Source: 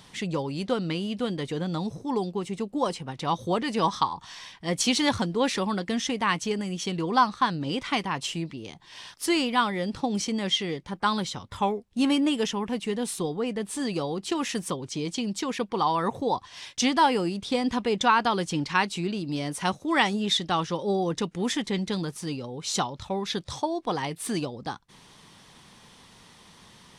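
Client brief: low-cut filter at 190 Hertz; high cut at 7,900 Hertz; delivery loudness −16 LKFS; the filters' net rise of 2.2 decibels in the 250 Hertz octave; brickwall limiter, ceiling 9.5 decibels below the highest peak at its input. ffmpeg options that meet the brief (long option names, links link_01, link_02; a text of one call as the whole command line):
ffmpeg -i in.wav -af "highpass=190,lowpass=7900,equalizer=frequency=250:width_type=o:gain=4.5,volume=12.5dB,alimiter=limit=-4dB:level=0:latency=1" out.wav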